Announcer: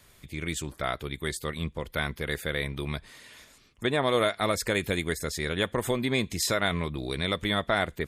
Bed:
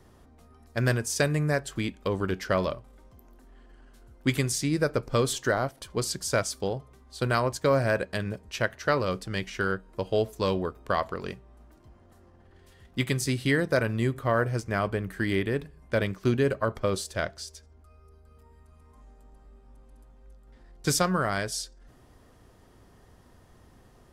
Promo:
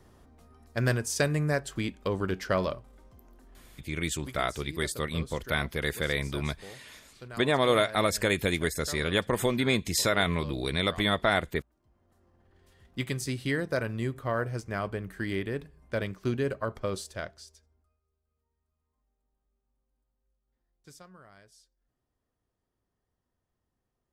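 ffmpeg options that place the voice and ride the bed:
ffmpeg -i stem1.wav -i stem2.wav -filter_complex "[0:a]adelay=3550,volume=1dB[link_01];[1:a]volume=11.5dB,afade=type=out:start_time=3.59:duration=0.35:silence=0.149624,afade=type=in:start_time=11.75:duration=1.08:silence=0.223872,afade=type=out:start_time=16.96:duration=1.04:silence=0.0794328[link_02];[link_01][link_02]amix=inputs=2:normalize=0" out.wav

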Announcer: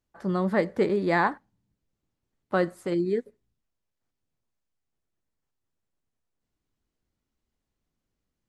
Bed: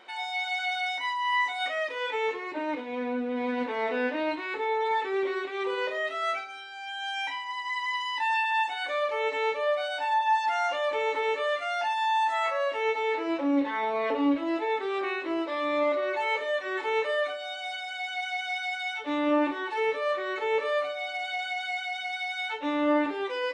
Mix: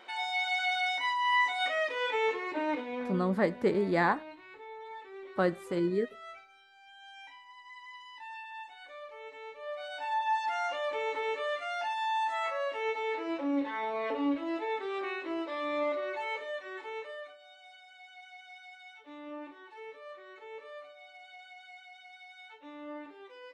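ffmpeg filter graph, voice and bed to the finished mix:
ffmpeg -i stem1.wav -i stem2.wav -filter_complex "[0:a]adelay=2850,volume=-3.5dB[link_01];[1:a]volume=12dB,afade=type=out:start_time=2.74:duration=0.62:silence=0.133352,afade=type=in:start_time=9.55:duration=0.65:silence=0.237137,afade=type=out:start_time=15.84:duration=1.52:silence=0.211349[link_02];[link_01][link_02]amix=inputs=2:normalize=0" out.wav

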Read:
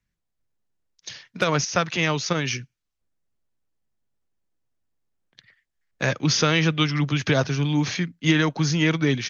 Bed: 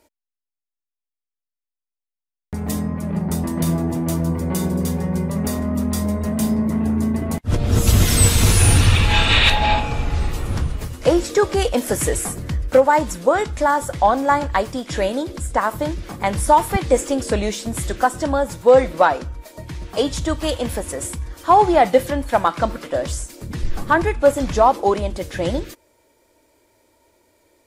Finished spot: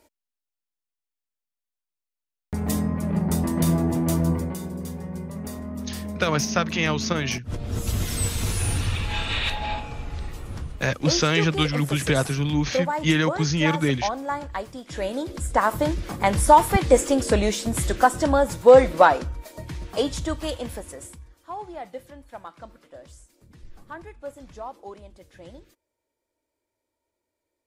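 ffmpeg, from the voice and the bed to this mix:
ffmpeg -i stem1.wav -i stem2.wav -filter_complex "[0:a]adelay=4800,volume=-1dB[link_01];[1:a]volume=10.5dB,afade=type=out:start_time=4.33:duration=0.23:silence=0.298538,afade=type=in:start_time=14.85:duration=0.89:silence=0.266073,afade=type=out:start_time=19.06:duration=2.35:silence=0.0749894[link_02];[link_01][link_02]amix=inputs=2:normalize=0" out.wav

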